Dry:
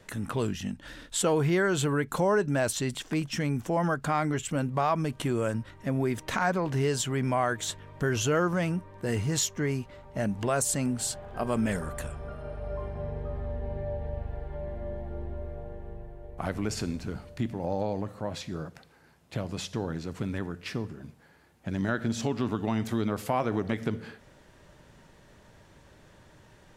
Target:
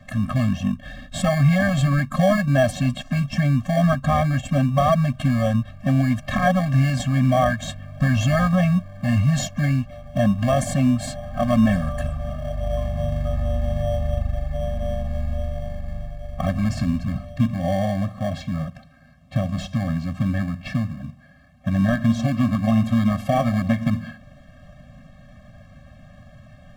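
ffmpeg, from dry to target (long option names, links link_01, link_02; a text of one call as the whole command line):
ffmpeg -i in.wav -filter_complex "[0:a]highshelf=frequency=9100:gain=-5.5,asplit=2[link_01][link_02];[link_02]acrusher=samples=34:mix=1:aa=0.000001,volume=-4.5dB[link_03];[link_01][link_03]amix=inputs=2:normalize=0,bass=frequency=250:gain=0,treble=frequency=4000:gain=-8,afftfilt=real='re*eq(mod(floor(b*sr/1024/260),2),0)':imag='im*eq(mod(floor(b*sr/1024/260),2),0)':win_size=1024:overlap=0.75,volume=8dB" out.wav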